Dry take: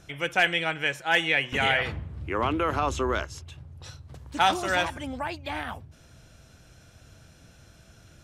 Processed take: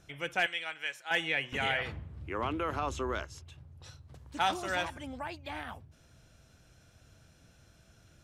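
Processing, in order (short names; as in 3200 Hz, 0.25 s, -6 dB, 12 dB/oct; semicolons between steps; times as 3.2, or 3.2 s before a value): 0.46–1.11 HPF 1400 Hz 6 dB/oct; gain -7.5 dB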